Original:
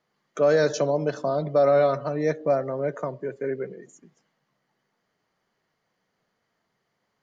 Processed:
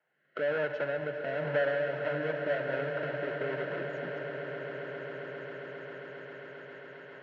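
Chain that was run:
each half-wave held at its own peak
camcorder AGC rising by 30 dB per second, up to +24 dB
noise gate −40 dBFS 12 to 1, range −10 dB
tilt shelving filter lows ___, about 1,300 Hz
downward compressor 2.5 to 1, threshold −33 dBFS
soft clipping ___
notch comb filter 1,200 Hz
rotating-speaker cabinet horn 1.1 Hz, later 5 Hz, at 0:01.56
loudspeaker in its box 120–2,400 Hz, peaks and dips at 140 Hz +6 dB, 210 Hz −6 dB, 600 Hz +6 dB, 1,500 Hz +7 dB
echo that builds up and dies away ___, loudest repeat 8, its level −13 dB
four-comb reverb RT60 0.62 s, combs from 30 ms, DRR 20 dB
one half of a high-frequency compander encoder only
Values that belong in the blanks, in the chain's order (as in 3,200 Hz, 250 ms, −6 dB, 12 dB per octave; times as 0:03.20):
−5 dB, −21.5 dBFS, 134 ms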